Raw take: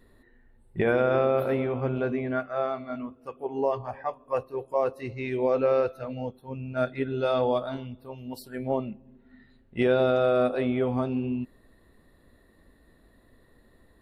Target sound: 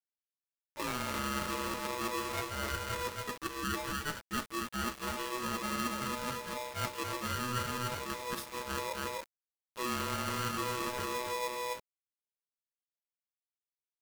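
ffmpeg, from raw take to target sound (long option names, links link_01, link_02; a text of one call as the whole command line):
ffmpeg -i in.wav -filter_complex "[0:a]asplit=2[link_01][link_02];[link_02]acrusher=samples=42:mix=1:aa=0.000001:lfo=1:lforange=67.2:lforate=1.3,volume=-7dB[link_03];[link_01][link_03]amix=inputs=2:normalize=0,flanger=delay=7.9:depth=3:regen=80:speed=0.79:shape=triangular,agate=range=-13dB:threshold=-48dB:ratio=16:detection=peak,asplit=2[link_04][link_05];[link_05]adelay=279.9,volume=-8dB,highshelf=frequency=4000:gain=-6.3[link_06];[link_04][link_06]amix=inputs=2:normalize=0,areverse,acompressor=threshold=-41dB:ratio=6,areverse,acrusher=bits=8:mix=0:aa=0.000001,highpass=frequency=140:poles=1,aeval=exprs='val(0)*sgn(sin(2*PI*740*n/s))':channel_layout=same,volume=7.5dB" out.wav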